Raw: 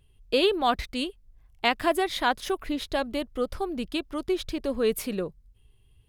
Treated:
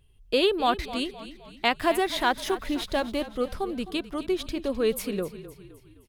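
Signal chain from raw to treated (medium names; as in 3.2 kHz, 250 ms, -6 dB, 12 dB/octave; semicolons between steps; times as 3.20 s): 1.82–3.24 s: companding laws mixed up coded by mu; frequency-shifting echo 259 ms, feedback 48%, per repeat -31 Hz, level -14.5 dB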